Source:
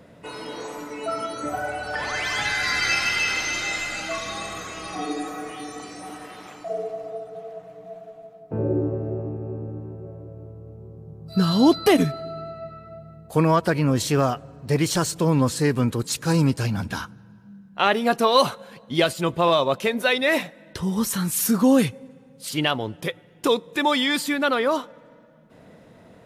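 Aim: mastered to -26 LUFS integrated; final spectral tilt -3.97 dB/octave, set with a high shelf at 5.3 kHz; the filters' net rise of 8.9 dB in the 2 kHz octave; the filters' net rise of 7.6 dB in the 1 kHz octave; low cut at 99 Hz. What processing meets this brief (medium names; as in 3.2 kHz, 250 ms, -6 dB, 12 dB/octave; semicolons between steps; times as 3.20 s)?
high-pass 99 Hz; peaking EQ 1 kHz +7 dB; peaking EQ 2 kHz +7.5 dB; treble shelf 5.3 kHz +9 dB; trim -8 dB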